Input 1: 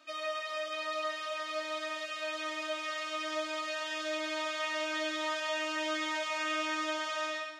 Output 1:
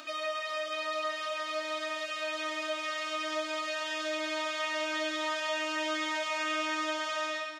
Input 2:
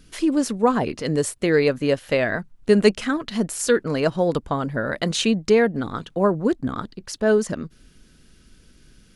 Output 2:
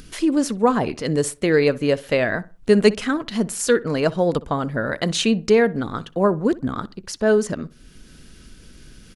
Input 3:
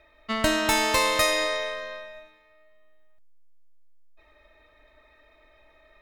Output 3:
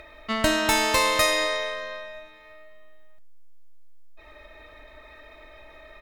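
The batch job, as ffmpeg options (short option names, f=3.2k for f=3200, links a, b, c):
-filter_complex "[0:a]asplit=2[a][b];[b]adelay=62,lowpass=f=2.2k:p=1,volume=-19dB,asplit=2[c][d];[d]adelay=62,lowpass=f=2.2k:p=1,volume=0.31,asplit=2[e][f];[f]adelay=62,lowpass=f=2.2k:p=1,volume=0.31[g];[a][c][e][g]amix=inputs=4:normalize=0,asplit=2[h][i];[i]acompressor=mode=upward:threshold=-29dB:ratio=2.5,volume=-2dB[j];[h][j]amix=inputs=2:normalize=0,volume=-4dB"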